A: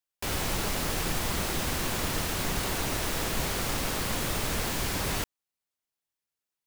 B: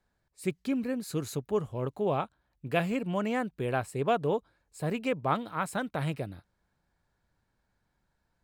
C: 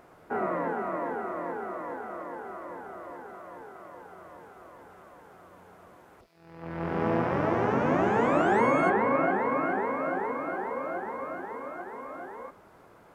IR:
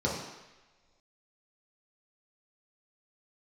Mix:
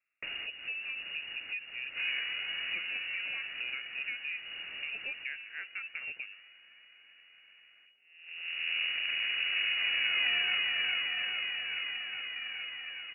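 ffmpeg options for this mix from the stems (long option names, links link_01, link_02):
-filter_complex "[0:a]volume=1dB[link_01];[1:a]highpass=170,volume=-4dB,asplit=2[link_02][link_03];[2:a]aeval=exprs='max(val(0),0)':channel_layout=same,adelay=1650,volume=-3dB[link_04];[link_03]apad=whole_len=293729[link_05];[link_01][link_05]sidechaincompress=threshold=-42dB:ratio=16:attack=16:release=1240[link_06];[link_06][link_02]amix=inputs=2:normalize=0,acompressor=threshold=-34dB:ratio=12,volume=0dB[link_07];[link_04][link_07]amix=inputs=2:normalize=0,equalizer=frequency=1900:width=2.7:gain=-14,lowpass=frequency=2500:width_type=q:width=0.5098,lowpass=frequency=2500:width_type=q:width=0.6013,lowpass=frequency=2500:width_type=q:width=0.9,lowpass=frequency=2500:width_type=q:width=2.563,afreqshift=-2900"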